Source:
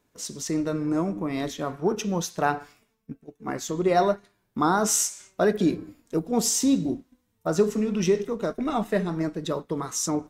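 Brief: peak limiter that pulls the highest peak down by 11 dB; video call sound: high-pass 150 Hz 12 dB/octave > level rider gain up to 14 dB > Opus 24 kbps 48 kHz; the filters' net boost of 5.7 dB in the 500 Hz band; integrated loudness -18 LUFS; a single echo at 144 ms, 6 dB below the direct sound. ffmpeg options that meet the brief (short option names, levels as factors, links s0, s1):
-af "equalizer=f=500:t=o:g=7.5,alimiter=limit=0.141:level=0:latency=1,highpass=150,aecho=1:1:144:0.501,dynaudnorm=m=5.01,volume=2.82" -ar 48000 -c:a libopus -b:a 24k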